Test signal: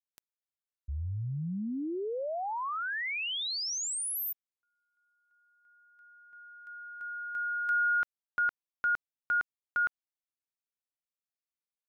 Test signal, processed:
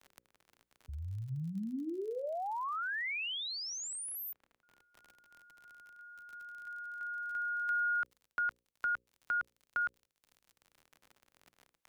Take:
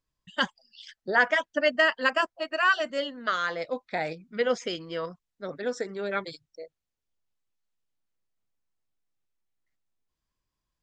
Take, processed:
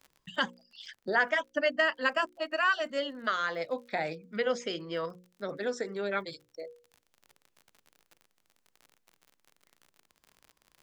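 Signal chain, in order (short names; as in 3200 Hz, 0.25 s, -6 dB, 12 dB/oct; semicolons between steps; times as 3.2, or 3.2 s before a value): crackle 51/s -49 dBFS; notches 60/120/180/240/300/360/420/480/540 Hz; three-band squash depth 40%; gain -3 dB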